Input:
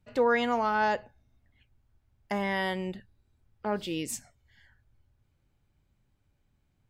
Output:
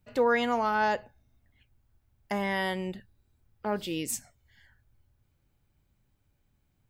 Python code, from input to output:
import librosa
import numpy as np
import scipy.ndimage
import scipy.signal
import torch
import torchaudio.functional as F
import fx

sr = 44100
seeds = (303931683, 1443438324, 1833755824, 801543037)

y = fx.high_shelf(x, sr, hz=12000.0, db=11.5)